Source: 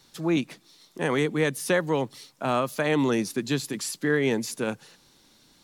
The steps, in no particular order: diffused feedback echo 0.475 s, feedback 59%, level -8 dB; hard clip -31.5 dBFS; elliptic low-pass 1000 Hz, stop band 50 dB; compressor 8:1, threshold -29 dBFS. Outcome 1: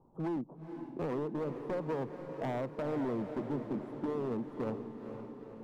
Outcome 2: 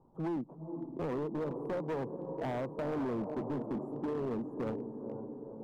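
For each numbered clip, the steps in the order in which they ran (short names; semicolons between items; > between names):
elliptic low-pass > compressor > hard clip > diffused feedback echo; elliptic low-pass > compressor > diffused feedback echo > hard clip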